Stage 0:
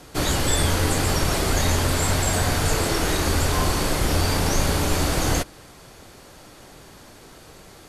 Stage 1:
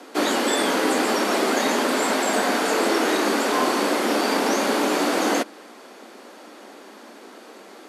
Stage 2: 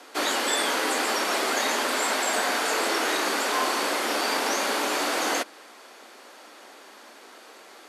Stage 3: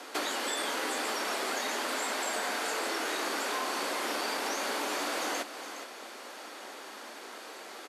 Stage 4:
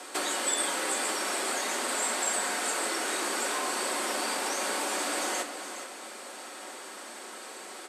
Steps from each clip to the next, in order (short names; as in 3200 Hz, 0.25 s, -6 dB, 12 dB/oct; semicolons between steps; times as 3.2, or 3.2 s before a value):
steep high-pass 210 Hz 72 dB/oct; high shelf 4100 Hz -11 dB; gain +5 dB
HPF 960 Hz 6 dB/oct
compressor 5:1, threshold -34 dBFS, peak gain reduction 12 dB; on a send: echo 0.415 s -10.5 dB; on the sum: gain +2.5 dB
bell 8300 Hz +13.5 dB 0.32 oct; shoebox room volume 2200 m³, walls mixed, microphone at 1 m